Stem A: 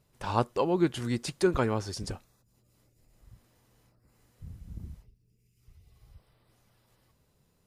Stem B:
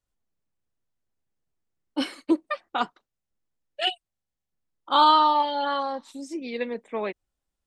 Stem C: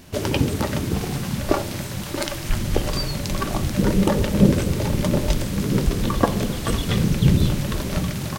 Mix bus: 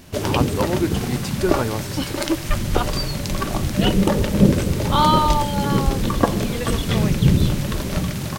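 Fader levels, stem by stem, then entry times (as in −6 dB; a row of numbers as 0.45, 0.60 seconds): +3.0, 0.0, +1.0 decibels; 0.00, 0.00, 0.00 seconds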